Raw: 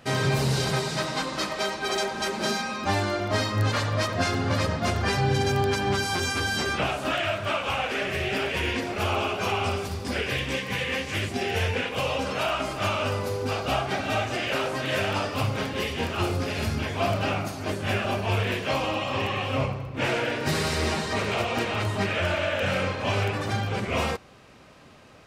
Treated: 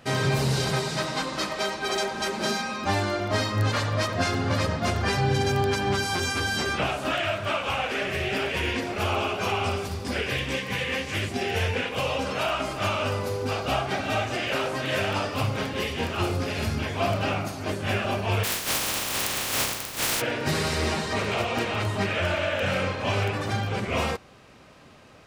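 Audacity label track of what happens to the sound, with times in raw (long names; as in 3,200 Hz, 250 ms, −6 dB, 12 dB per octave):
18.430000	20.200000	compressing power law on the bin magnitudes exponent 0.15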